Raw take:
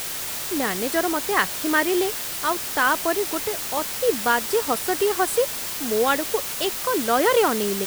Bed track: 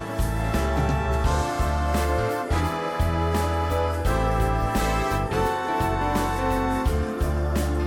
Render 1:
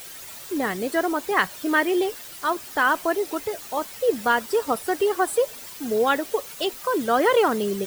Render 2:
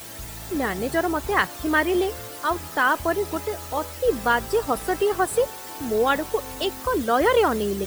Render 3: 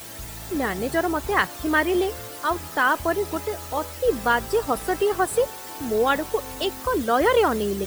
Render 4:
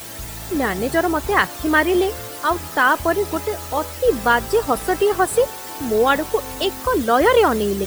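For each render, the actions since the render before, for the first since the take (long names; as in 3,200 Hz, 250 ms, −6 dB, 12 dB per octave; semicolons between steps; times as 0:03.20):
broadband denoise 12 dB, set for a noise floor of −30 dBFS
mix in bed track −15 dB
no processing that can be heard
level +4.5 dB; brickwall limiter −2 dBFS, peak gain reduction 1 dB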